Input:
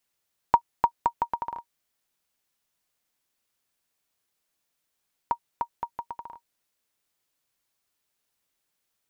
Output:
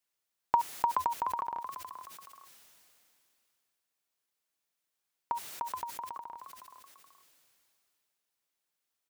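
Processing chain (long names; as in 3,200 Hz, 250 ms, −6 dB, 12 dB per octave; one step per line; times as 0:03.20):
low-shelf EQ 180 Hz −8 dB
echo with shifted repeats 425 ms, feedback 34%, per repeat +79 Hz, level −24 dB
level that may fall only so fast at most 21 dB per second
level −6 dB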